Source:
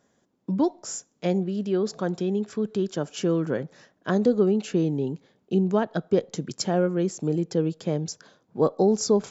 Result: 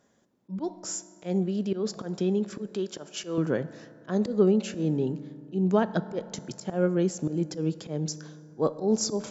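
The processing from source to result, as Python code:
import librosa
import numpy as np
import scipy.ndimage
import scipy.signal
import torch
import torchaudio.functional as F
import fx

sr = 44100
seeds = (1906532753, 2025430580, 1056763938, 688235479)

y = fx.highpass(x, sr, hz=440.0, slope=6, at=(2.71, 3.38))
y = fx.auto_swell(y, sr, attack_ms=144.0)
y = fx.rev_fdn(y, sr, rt60_s=2.5, lf_ratio=1.0, hf_ratio=0.4, size_ms=10.0, drr_db=13.5)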